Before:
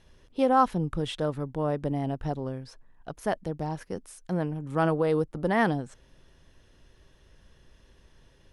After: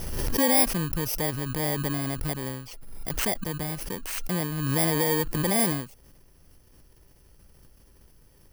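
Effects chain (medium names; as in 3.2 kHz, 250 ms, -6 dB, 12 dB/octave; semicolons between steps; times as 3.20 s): bit-reversed sample order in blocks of 32 samples; swell ahead of each attack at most 31 dB/s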